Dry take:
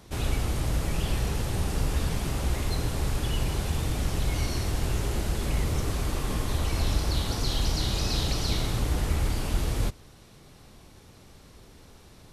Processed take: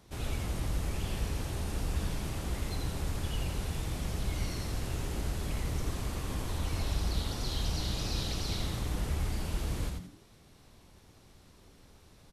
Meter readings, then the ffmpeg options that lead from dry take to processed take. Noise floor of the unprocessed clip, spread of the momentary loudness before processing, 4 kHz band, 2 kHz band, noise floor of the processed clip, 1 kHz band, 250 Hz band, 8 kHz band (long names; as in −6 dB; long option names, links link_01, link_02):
−52 dBFS, 3 LU, −6.5 dB, −6.5 dB, −59 dBFS, −6.5 dB, −6.0 dB, −6.5 dB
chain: -filter_complex "[0:a]asplit=5[link_01][link_02][link_03][link_04][link_05];[link_02]adelay=85,afreqshift=-110,volume=-4dB[link_06];[link_03]adelay=170,afreqshift=-220,volume=-13.6dB[link_07];[link_04]adelay=255,afreqshift=-330,volume=-23.3dB[link_08];[link_05]adelay=340,afreqshift=-440,volume=-32.9dB[link_09];[link_01][link_06][link_07][link_08][link_09]amix=inputs=5:normalize=0,volume=-8dB"